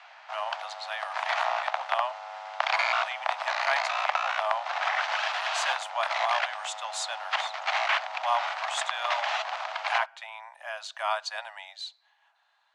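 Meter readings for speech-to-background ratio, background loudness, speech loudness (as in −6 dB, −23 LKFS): −4.5 dB, −29.5 LKFS, −34.0 LKFS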